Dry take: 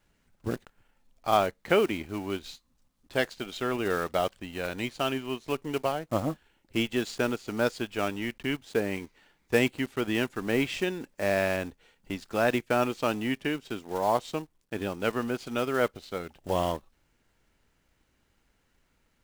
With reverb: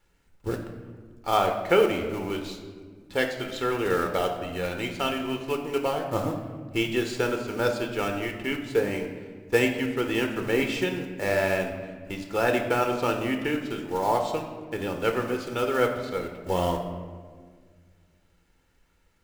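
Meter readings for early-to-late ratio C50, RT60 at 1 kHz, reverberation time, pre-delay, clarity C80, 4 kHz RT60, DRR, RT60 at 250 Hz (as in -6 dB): 7.0 dB, 1.5 s, 1.7 s, 4 ms, 8.5 dB, 0.95 s, 3.5 dB, 2.7 s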